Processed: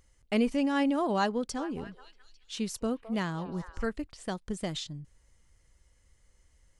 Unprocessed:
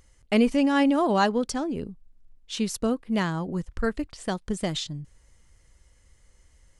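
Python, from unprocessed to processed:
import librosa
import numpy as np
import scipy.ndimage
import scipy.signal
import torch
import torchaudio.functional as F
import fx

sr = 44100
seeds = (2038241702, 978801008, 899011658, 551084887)

y = fx.echo_stepped(x, sr, ms=212, hz=770.0, octaves=0.7, feedback_pct=70, wet_db=-9, at=(1.57, 3.83), fade=0.02)
y = F.gain(torch.from_numpy(y), -6.0).numpy()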